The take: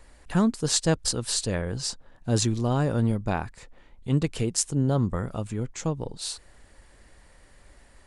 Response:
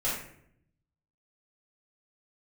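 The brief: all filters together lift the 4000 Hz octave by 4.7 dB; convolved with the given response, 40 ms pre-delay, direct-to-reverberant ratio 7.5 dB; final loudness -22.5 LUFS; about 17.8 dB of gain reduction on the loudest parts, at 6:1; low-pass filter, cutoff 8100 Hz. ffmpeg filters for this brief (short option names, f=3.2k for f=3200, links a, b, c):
-filter_complex "[0:a]lowpass=8.1k,equalizer=f=4k:t=o:g=6,acompressor=threshold=-38dB:ratio=6,asplit=2[a][b];[1:a]atrim=start_sample=2205,adelay=40[c];[b][c]afir=irnorm=-1:irlink=0,volume=-15.5dB[d];[a][d]amix=inputs=2:normalize=0,volume=18dB"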